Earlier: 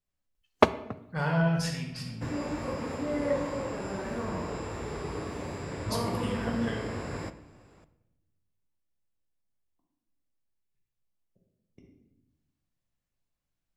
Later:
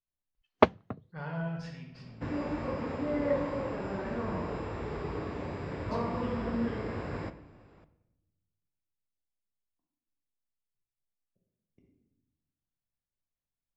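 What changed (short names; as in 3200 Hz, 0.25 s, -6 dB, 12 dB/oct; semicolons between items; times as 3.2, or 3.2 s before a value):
speech -9.5 dB; first sound: send off; master: add air absorption 180 m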